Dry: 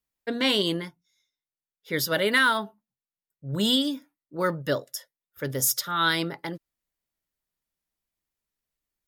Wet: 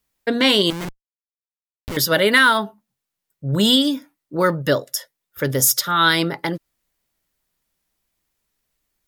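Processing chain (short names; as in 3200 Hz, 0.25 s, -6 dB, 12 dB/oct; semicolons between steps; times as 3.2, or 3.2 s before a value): in parallel at +1 dB: compressor, threshold -34 dBFS, peak gain reduction 16 dB; 0.7–1.97 on the sum: Schmitt trigger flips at -33 dBFS; gain +5.5 dB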